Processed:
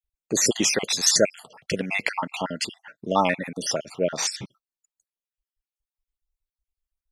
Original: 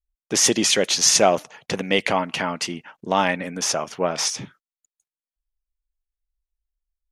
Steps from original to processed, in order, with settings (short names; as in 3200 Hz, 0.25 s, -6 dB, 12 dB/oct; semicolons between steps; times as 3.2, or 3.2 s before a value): random spectral dropouts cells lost 51%